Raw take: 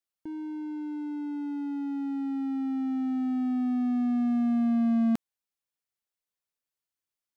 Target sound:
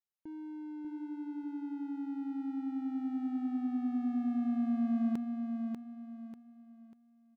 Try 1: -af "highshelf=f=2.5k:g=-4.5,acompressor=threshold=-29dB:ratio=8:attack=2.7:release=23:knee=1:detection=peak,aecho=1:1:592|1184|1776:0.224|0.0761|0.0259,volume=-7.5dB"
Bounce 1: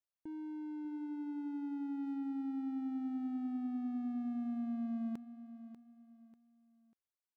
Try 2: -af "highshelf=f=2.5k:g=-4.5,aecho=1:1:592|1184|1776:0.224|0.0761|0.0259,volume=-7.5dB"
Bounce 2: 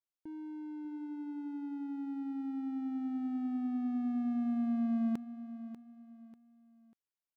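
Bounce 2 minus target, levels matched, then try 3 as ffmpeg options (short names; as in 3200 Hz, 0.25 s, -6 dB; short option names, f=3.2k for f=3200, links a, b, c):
echo-to-direct -8 dB
-af "highshelf=f=2.5k:g=-4.5,aecho=1:1:592|1184|1776|2368:0.562|0.191|0.065|0.0221,volume=-7.5dB"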